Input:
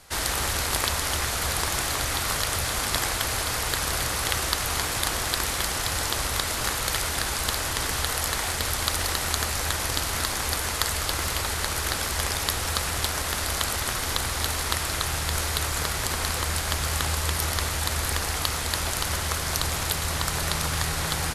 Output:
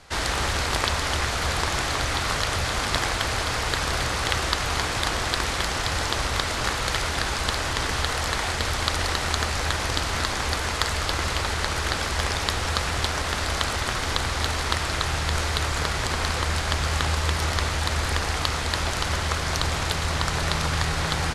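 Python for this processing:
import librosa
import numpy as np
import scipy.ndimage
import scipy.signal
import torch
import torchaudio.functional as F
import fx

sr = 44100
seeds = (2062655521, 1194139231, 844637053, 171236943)

y = fx.air_absorb(x, sr, metres=78.0)
y = F.gain(torch.from_numpy(y), 3.5).numpy()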